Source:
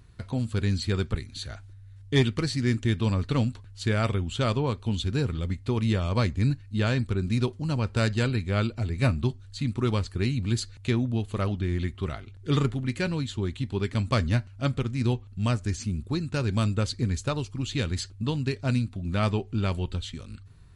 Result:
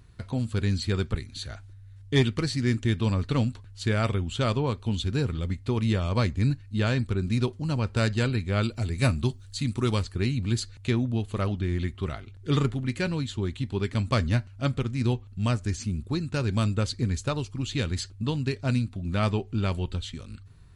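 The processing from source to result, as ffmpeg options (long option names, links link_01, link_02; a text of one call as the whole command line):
ffmpeg -i in.wav -filter_complex "[0:a]asettb=1/sr,asplit=3[link_01][link_02][link_03];[link_01]atrim=end=8.634[link_04];[link_02]atrim=start=8.63:end=10.03,asetpts=PTS-STARTPTS,afade=type=in:duration=0.004:curve=qsin,afade=type=out:start_time=1.396:duration=0.004:curve=qsin,highshelf=frequency=5400:gain=11.5[link_05];[link_03]atrim=start=10.026[link_06];[link_04][link_05]acrossfade=duration=0.004:curve1=hsin:curve2=qsin[link_07];[link_07][link_06]acrossfade=duration=0.004:curve1=qsin:curve2=hsin" out.wav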